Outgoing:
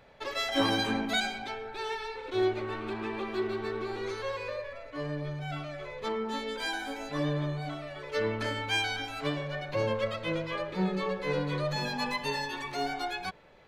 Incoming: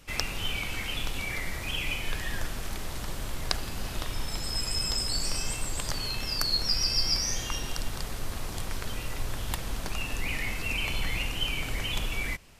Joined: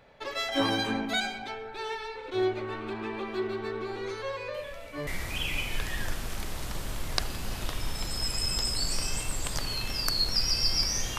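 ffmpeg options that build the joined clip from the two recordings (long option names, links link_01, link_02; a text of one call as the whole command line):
ffmpeg -i cue0.wav -i cue1.wav -filter_complex "[1:a]asplit=2[link_01][link_02];[0:a]apad=whole_dur=11.18,atrim=end=11.18,atrim=end=5.072[link_03];[link_02]atrim=start=1.398:end=7.51[link_04];[link_01]atrim=start=0.87:end=1.4,asetpts=PTS-STARTPTS,volume=-16.5dB,afade=type=in:duration=0.004:curve=hsin,afade=type=out:start_time=0.526:duration=0.004:curve=hsin,adelay=4540[link_05];[link_03][link_04]acrossfade=duration=0.004:curve1=hsin:curve2=hsin[link_06];[link_06][link_05]amix=inputs=2:normalize=0" out.wav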